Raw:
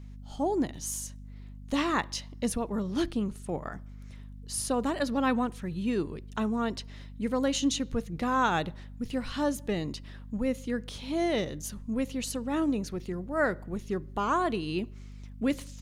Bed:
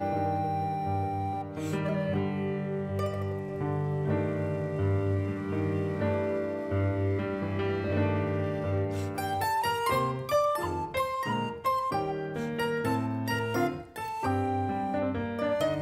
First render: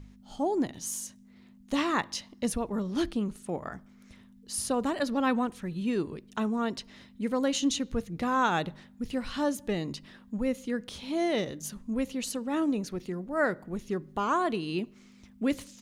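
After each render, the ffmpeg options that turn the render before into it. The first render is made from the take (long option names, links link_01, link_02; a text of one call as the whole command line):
ffmpeg -i in.wav -af "bandreject=frequency=50:width_type=h:width=4,bandreject=frequency=100:width_type=h:width=4,bandreject=frequency=150:width_type=h:width=4" out.wav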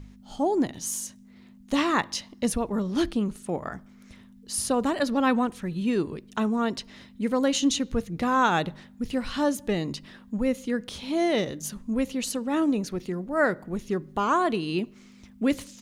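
ffmpeg -i in.wav -af "volume=4dB" out.wav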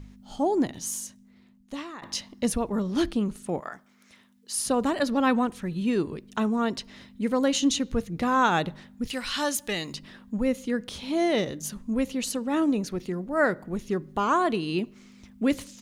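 ffmpeg -i in.wav -filter_complex "[0:a]asettb=1/sr,asplit=3[link_01][link_02][link_03];[link_01]atrim=end=3.604[link_04];[link_02]atrim=start=3.6:end=4.66,asetpts=PTS-STARTPTS,afade=type=in:duration=0.004:curve=qsin,afade=type=out:start_time=1.056:duration=0.004:curve=qsin,highpass=frequency=760:poles=1[link_05];[link_03]atrim=start=4.656[link_06];[link_04][link_05]acrossfade=duration=0.004:curve1=hsin:curve2=qsin[link_07];[link_07][link_06]acrossfade=duration=0.004:curve1=qsin:curve2=hsin,asettb=1/sr,asplit=3[link_08][link_09][link_10];[link_08]atrim=end=9.074[link_11];[link_09]atrim=start=9.07:end=9.94,asetpts=PTS-STARTPTS,afade=type=in:duration=0.004:curve=qsin,afade=type=out:start_time=0.866:duration=0.004:curve=qsin,tiltshelf=frequency=970:gain=-8.5[link_12];[link_10]atrim=start=9.936[link_13];[link_11][link_12]acrossfade=duration=0.004:curve1=hsin:curve2=qsin[link_14];[link_14][link_13]acrossfade=duration=0.004:curve1=qsin:curve2=hsin,asplit=2[link_15][link_16];[link_15]atrim=end=2.02,asetpts=PTS-STARTPTS,afade=type=out:start_time=0.74:duration=1.28:silence=0.0841395[link_17];[link_16]atrim=start=2.02,asetpts=PTS-STARTPTS,afade=type=in:duration=0.004:curve=hsin:silence=0.0841395[link_18];[link_17][link_18]concat=n=2:v=0:a=1" out.wav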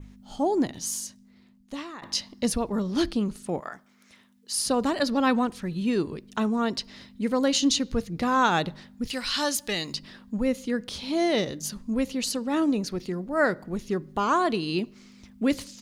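ffmpeg -i in.wav -af "adynamicequalizer=threshold=0.00251:dfrequency=4700:dqfactor=2.6:tfrequency=4700:tqfactor=2.6:attack=5:release=100:ratio=0.375:range=4:mode=boostabove:tftype=bell" out.wav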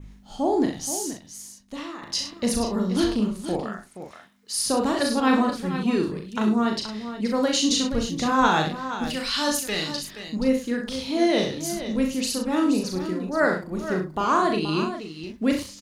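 ffmpeg -i in.wav -filter_complex "[0:a]asplit=2[link_01][link_02];[link_02]adelay=38,volume=-4dB[link_03];[link_01][link_03]amix=inputs=2:normalize=0,aecho=1:1:65|476:0.422|0.299" out.wav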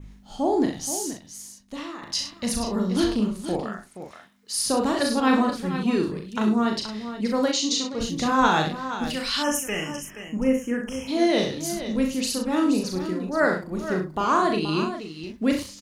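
ffmpeg -i in.wav -filter_complex "[0:a]asettb=1/sr,asplit=3[link_01][link_02][link_03];[link_01]atrim=end=2.124[link_04];[link_02]atrim=start=2.12:end=2.67,asetpts=PTS-STARTPTS,afade=type=in:duration=0.004:curve=qsin,afade=type=out:start_time=0.546:duration=0.004:curve=qsin,equalizer=frequency=390:width=1.4:gain=-9.5[link_05];[link_03]atrim=start=2.666[link_06];[link_04][link_05]acrossfade=duration=0.004:curve1=hsin:curve2=qsin[link_07];[link_07][link_06]acrossfade=duration=0.004:curve1=qsin:curve2=hsin,asplit=3[link_08][link_09][link_10];[link_08]afade=type=out:start_time=7.51:duration=0.02[link_11];[link_09]highpass=330,equalizer=frequency=600:width_type=q:width=4:gain=-6,equalizer=frequency=1600:width_type=q:width=4:gain=-10,equalizer=frequency=2900:width_type=q:width=4:gain=-5,lowpass=frequency=7500:width=0.5412,lowpass=frequency=7500:width=1.3066,afade=type=in:start_time=7.51:duration=0.02,afade=type=out:start_time=7.99:duration=0.02[link_12];[link_10]afade=type=in:start_time=7.99:duration=0.02[link_13];[link_11][link_12][link_13]amix=inputs=3:normalize=0,asplit=3[link_14][link_15][link_16];[link_14]afade=type=out:start_time=9.42:duration=0.02[link_17];[link_15]asuperstop=centerf=4100:order=12:qfactor=1.8,afade=type=in:start_time=9.42:duration=0.02,afade=type=out:start_time=11.07:duration=0.02[link_18];[link_16]afade=type=in:start_time=11.07:duration=0.02[link_19];[link_17][link_18][link_19]amix=inputs=3:normalize=0" out.wav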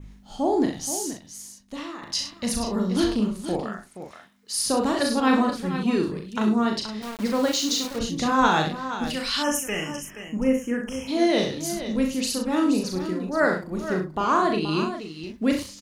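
ffmpeg -i in.wav -filter_complex "[0:a]asettb=1/sr,asplit=3[link_01][link_02][link_03];[link_01]atrim=end=7.024[link_04];[link_02]atrim=start=7.02:end=7.99,asetpts=PTS-STARTPTS,afade=type=in:duration=0.004:curve=qsin,afade=type=out:start_time=0.966:duration=0.004:curve=qsin,aeval=exprs='val(0)*gte(abs(val(0)),0.0266)':channel_layout=same[link_05];[link_03]atrim=start=7.986[link_06];[link_04][link_05]acrossfade=duration=0.004:curve1=hsin:curve2=qsin[link_07];[link_07][link_06]acrossfade=duration=0.004:curve1=qsin:curve2=hsin,asettb=1/sr,asplit=3[link_08][link_09][link_10];[link_08]atrim=end=14.064[link_11];[link_09]atrim=start=14.06:end=14.71,asetpts=PTS-STARTPTS,afade=type=in:duration=0.004:curve=qsin,afade=type=out:start_time=0.646:duration=0.004:curve=qsin,highshelf=frequency=6400:gain=-5[link_12];[link_10]atrim=start=14.706[link_13];[link_11][link_12]acrossfade=duration=0.004:curve1=hsin:curve2=qsin[link_14];[link_14][link_13]acrossfade=duration=0.004:curve1=qsin:curve2=hsin" out.wav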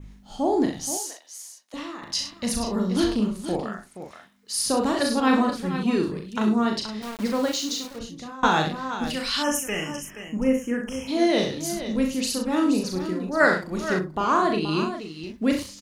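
ffmpeg -i in.wav -filter_complex "[0:a]asettb=1/sr,asplit=3[link_01][link_02][link_03];[link_01]atrim=end=0.974[link_04];[link_02]atrim=start=0.97:end=1.74,asetpts=PTS-STARTPTS,afade=type=in:duration=0.004:curve=qsin,afade=type=out:start_time=0.766:duration=0.004:curve=qsin,highpass=frequency=530:width=0.5412,highpass=frequency=530:width=1.3066[link_05];[link_03]atrim=start=1.736[link_06];[link_04][link_05]acrossfade=duration=0.004:curve1=hsin:curve2=qsin[link_07];[link_07][link_06]acrossfade=duration=0.004:curve1=qsin:curve2=hsin,asettb=1/sr,asplit=3[link_08][link_09][link_10];[link_08]atrim=end=13.404[link_11];[link_09]atrim=start=13.4:end=13.99,asetpts=PTS-STARTPTS,afade=type=in:duration=0.004:curve=qsin,afade=type=out:start_time=0.586:duration=0.004:curve=qsin,equalizer=frequency=3900:width=0.34:gain=8[link_12];[link_10]atrim=start=13.986[link_13];[link_11][link_12]acrossfade=duration=0.004:curve1=hsin:curve2=qsin[link_14];[link_14][link_13]acrossfade=duration=0.004:curve1=qsin:curve2=hsin,asplit=2[link_15][link_16];[link_15]atrim=end=8.43,asetpts=PTS-STARTPTS,afade=type=out:start_time=7.21:duration=1.22:silence=0.0749894[link_17];[link_16]atrim=start=8.43,asetpts=PTS-STARTPTS,afade=type=in:duration=0.004:curve=hsin:silence=0.0749894[link_18];[link_17][link_18]concat=n=2:v=0:a=1" out.wav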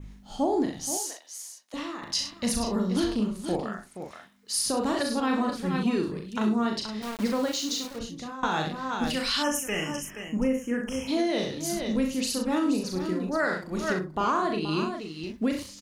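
ffmpeg -i in.wav -af "alimiter=limit=-16.5dB:level=0:latency=1:release=445" out.wav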